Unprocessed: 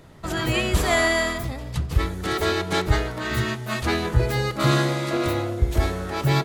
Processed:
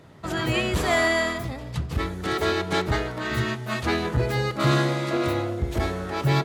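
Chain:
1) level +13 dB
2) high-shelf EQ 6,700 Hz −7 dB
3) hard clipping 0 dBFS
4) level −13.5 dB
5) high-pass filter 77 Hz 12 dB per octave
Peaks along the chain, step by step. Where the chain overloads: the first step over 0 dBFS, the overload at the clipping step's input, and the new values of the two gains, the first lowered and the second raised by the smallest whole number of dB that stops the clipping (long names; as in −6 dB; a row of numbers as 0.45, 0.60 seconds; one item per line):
+7.0, +7.0, 0.0, −13.5, −9.5 dBFS
step 1, 7.0 dB
step 1 +6 dB, step 4 −6.5 dB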